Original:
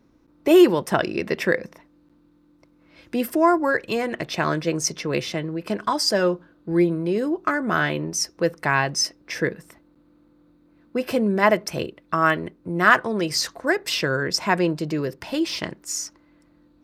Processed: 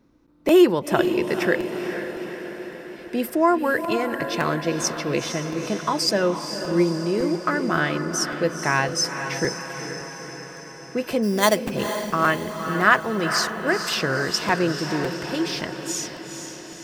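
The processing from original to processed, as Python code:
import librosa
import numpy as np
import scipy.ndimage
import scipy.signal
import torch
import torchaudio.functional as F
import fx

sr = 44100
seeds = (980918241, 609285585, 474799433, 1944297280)

y = fx.sample_hold(x, sr, seeds[0], rate_hz=5200.0, jitter_pct=0, at=(11.22, 11.7), fade=0.02)
y = fx.echo_diffused(y, sr, ms=469, feedback_pct=61, wet_db=-8.0)
y = fx.buffer_crackle(y, sr, first_s=0.48, period_s=0.56, block=256, kind='repeat')
y = F.gain(torch.from_numpy(y), -1.0).numpy()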